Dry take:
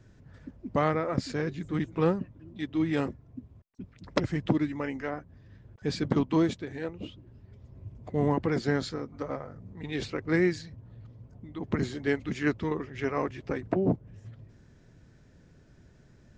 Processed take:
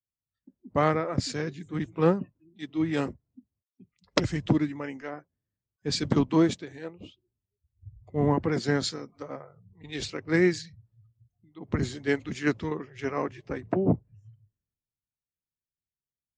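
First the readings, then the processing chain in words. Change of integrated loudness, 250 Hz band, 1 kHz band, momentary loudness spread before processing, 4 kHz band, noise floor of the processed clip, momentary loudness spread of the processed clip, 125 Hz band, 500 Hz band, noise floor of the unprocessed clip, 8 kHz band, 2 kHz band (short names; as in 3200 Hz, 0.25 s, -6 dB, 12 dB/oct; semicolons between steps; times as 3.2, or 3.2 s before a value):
+2.0 dB, +1.0 dB, +1.5 dB, 21 LU, +6.0 dB, under -85 dBFS, 16 LU, +1.5 dB, +1.5 dB, -58 dBFS, n/a, +1.5 dB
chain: spectral noise reduction 20 dB; high shelf 5800 Hz +8.5 dB; three-band expander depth 70%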